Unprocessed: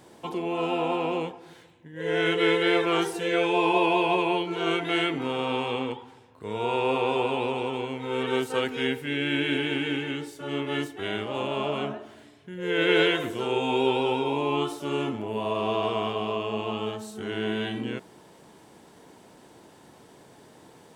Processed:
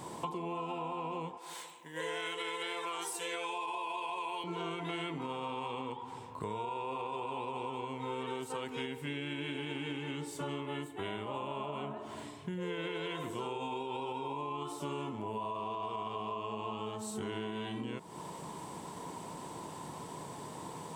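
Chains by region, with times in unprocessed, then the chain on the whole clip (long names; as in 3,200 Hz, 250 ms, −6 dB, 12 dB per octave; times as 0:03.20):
0:01.37–0:04.44: Bessel high-pass filter 640 Hz + high-shelf EQ 5,100 Hz +10.5 dB
0:10.66–0:11.97: parametric band 5,400 Hz −12 dB 0.55 octaves + notch filter 1,100 Hz, Q 16
whole clip: thirty-one-band graphic EQ 100 Hz +3 dB, 160 Hz +8 dB, 1,000 Hz +12 dB, 1,600 Hz −5 dB, 8,000 Hz +7 dB; brickwall limiter −16.5 dBFS; downward compressor 12 to 1, threshold −40 dBFS; level +4.5 dB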